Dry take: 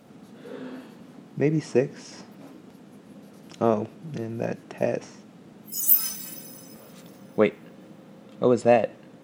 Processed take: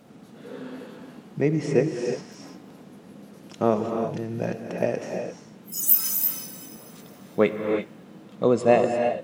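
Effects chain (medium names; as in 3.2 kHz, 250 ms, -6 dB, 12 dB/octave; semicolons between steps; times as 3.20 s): gated-style reverb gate 370 ms rising, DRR 3.5 dB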